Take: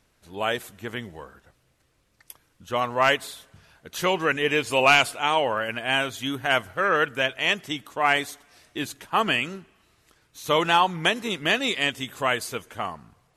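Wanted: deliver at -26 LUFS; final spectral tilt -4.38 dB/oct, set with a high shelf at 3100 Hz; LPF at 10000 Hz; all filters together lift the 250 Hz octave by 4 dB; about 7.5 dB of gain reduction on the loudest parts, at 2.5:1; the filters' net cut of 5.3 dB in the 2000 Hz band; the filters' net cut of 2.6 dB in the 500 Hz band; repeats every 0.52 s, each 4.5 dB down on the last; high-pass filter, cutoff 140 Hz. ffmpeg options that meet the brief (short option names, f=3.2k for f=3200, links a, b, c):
-af "highpass=140,lowpass=10k,equalizer=f=250:t=o:g=7,equalizer=f=500:t=o:g=-4.5,equalizer=f=2k:t=o:g=-5,highshelf=f=3.1k:g=-5,acompressor=threshold=-28dB:ratio=2.5,aecho=1:1:520|1040|1560|2080|2600|3120|3640|4160|4680:0.596|0.357|0.214|0.129|0.0772|0.0463|0.0278|0.0167|0.01,volume=4.5dB"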